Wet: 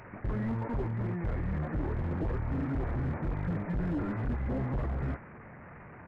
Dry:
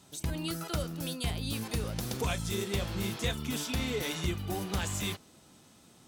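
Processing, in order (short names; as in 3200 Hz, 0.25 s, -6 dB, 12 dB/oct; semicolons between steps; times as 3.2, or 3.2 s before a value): delta modulation 16 kbps, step -48 dBFS; hard clip -34.5 dBFS, distortion -8 dB; pitch shift -6.5 st; gain +6.5 dB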